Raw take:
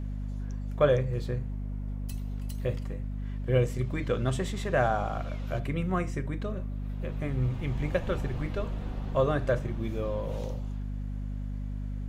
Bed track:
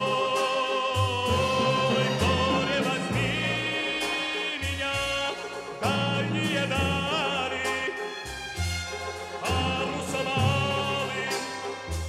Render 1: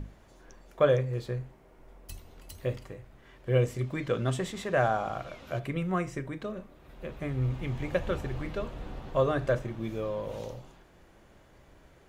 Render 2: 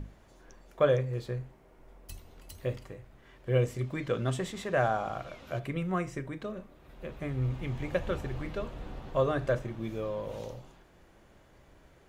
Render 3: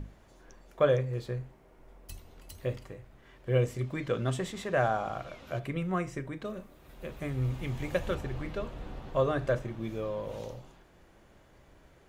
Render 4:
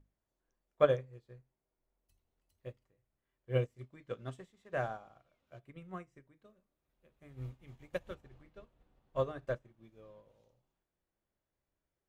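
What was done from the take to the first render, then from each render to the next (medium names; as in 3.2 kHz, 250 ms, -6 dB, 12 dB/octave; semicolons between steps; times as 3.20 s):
hum notches 50/100/150/200/250 Hz
trim -1.5 dB
6.45–8.15 s: treble shelf 5.7 kHz +10.5 dB
upward expansion 2.5:1, over -40 dBFS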